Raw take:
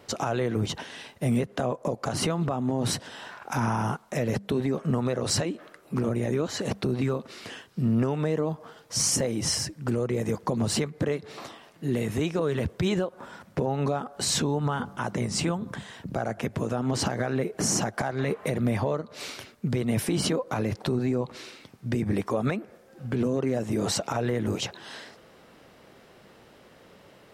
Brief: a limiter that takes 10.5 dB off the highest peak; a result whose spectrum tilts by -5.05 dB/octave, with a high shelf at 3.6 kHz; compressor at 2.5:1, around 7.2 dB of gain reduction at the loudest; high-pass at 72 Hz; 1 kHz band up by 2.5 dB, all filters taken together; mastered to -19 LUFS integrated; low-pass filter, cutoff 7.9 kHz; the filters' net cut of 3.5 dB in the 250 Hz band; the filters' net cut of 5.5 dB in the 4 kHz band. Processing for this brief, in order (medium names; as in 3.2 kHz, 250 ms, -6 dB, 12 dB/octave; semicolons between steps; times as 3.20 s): high-pass 72 Hz; low-pass 7.9 kHz; peaking EQ 250 Hz -4.5 dB; peaking EQ 1 kHz +4 dB; treble shelf 3.6 kHz -4 dB; peaking EQ 4 kHz -4 dB; compression 2.5:1, threshold -34 dBFS; trim +21 dB; peak limiter -8.5 dBFS